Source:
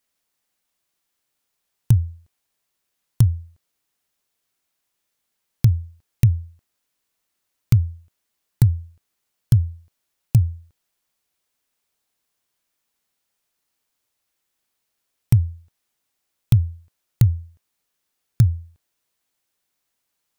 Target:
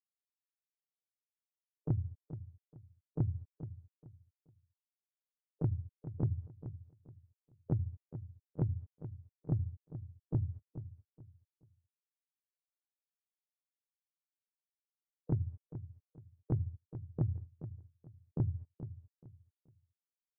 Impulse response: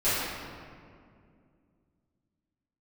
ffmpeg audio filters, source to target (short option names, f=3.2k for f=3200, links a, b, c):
-filter_complex "[0:a]bandreject=f=50:t=h:w=6,bandreject=f=100:t=h:w=6,bandreject=f=150:t=h:w=6,bandreject=f=200:t=h:w=6,bandreject=f=250:t=h:w=6,bandreject=f=300:t=h:w=6,afftfilt=real='re*gte(hypot(re,im),0.126)':imag='im*gte(hypot(re,im),0.126)':win_size=1024:overlap=0.75,acompressor=threshold=-22dB:ratio=12,asplit=2[a][b];[b]asetrate=58866,aresample=44100,atempo=0.749154,volume=-10dB[c];[a][c]amix=inputs=2:normalize=0,asplit=2[d][e];[e]highpass=f=720:p=1,volume=23dB,asoftclip=type=tanh:threshold=-12.5dB[f];[d][f]amix=inputs=2:normalize=0,lowpass=f=1.1k:p=1,volume=-6dB,asplit=2[g][h];[h]aecho=0:1:428|856|1284:0.251|0.0678|0.0183[i];[g][i]amix=inputs=2:normalize=0,volume=-7dB"